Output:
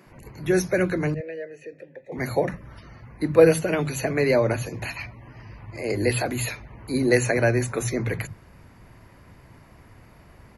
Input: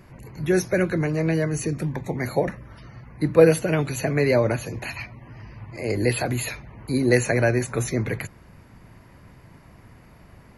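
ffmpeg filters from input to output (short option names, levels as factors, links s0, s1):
-filter_complex "[0:a]asettb=1/sr,asplit=3[s0][s1][s2];[s0]atrim=end=1.144[s3];[s1]atrim=start=1.14:end=2.12,asetpts=PTS-STARTPTS,afade=t=in:d=0.004:c=qsin,afade=t=out:st=0.976:d=0.004:c=qsin,asplit=3[s4][s5][s6];[s4]bandpass=f=530:t=q:w=8,volume=1[s7];[s5]bandpass=f=1840:t=q:w=8,volume=0.501[s8];[s6]bandpass=f=2480:t=q:w=8,volume=0.355[s9];[s7][s8][s9]amix=inputs=3:normalize=0[s10];[s2]atrim=start=2.116[s11];[s3][s10]acrossfade=d=0.004:c1=hsin:c2=qsin[s12];[s12][s11]acrossfade=d=0.004:c1=qsin:c2=hsin,acrossover=split=170[s13][s14];[s13]adelay=60[s15];[s15][s14]amix=inputs=2:normalize=0"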